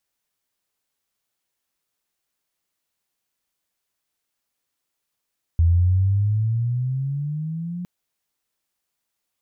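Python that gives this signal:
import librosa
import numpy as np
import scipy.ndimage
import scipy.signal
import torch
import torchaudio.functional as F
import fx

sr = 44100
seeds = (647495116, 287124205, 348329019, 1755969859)

y = fx.chirp(sr, length_s=2.26, from_hz=82.0, to_hz=180.0, law='logarithmic', from_db=-12.5, to_db=-27.0)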